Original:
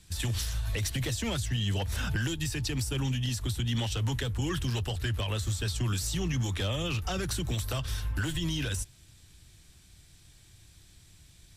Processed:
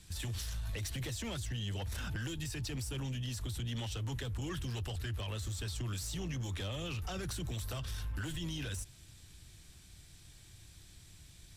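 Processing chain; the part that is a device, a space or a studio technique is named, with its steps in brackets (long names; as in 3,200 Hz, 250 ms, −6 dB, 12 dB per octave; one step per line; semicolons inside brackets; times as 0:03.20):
soft clipper into limiter (soft clipping −25.5 dBFS, distortion −19 dB; brickwall limiter −33.5 dBFS, peak gain reduction 7 dB)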